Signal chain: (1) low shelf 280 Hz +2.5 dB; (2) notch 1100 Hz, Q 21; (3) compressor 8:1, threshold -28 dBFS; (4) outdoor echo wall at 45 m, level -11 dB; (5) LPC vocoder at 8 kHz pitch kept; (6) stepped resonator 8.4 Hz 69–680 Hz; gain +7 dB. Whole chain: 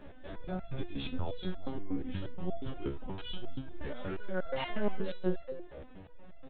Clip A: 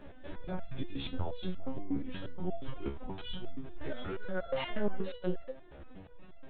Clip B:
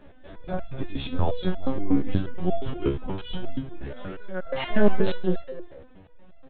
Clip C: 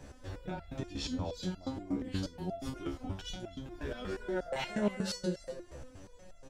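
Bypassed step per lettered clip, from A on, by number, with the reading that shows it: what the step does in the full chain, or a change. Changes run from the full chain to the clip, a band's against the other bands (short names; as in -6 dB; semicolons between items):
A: 4, momentary loudness spread change +2 LU; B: 3, mean gain reduction 6.0 dB; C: 5, 4 kHz band +2.5 dB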